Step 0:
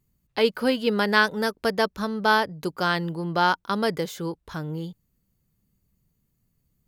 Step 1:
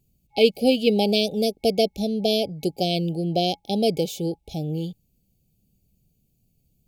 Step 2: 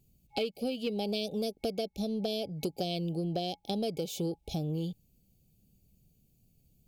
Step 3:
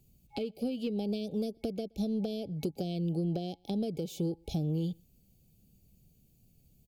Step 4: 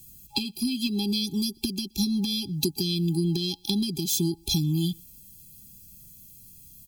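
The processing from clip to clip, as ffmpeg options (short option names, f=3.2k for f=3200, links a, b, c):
-af "afftfilt=real='re*(1-between(b*sr/4096,830,2200))':imag='im*(1-between(b*sr/4096,830,2200))':win_size=4096:overlap=0.75,volume=4dB"
-af "acompressor=threshold=-29dB:ratio=12,asoftclip=type=tanh:threshold=-20dB"
-filter_complex "[0:a]acrossover=split=400[a][b];[b]acompressor=threshold=-46dB:ratio=6[c];[a][c]amix=inputs=2:normalize=0,asplit=2[d][e];[e]adelay=122.4,volume=-30dB,highshelf=f=4k:g=-2.76[f];[d][f]amix=inputs=2:normalize=0,volume=2.5dB"
-af "aexciter=amount=4.7:drive=8:freq=2.8k,afftfilt=real='re*eq(mod(floor(b*sr/1024/390),2),0)':imag='im*eq(mod(floor(b*sr/1024/390),2),0)':win_size=1024:overlap=0.75,volume=6.5dB"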